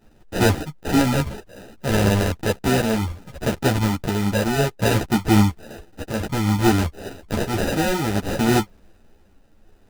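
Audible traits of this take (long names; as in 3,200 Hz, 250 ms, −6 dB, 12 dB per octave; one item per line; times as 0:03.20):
tremolo triangle 0.61 Hz, depth 55%
aliases and images of a low sample rate 1,100 Hz, jitter 0%
a shimmering, thickened sound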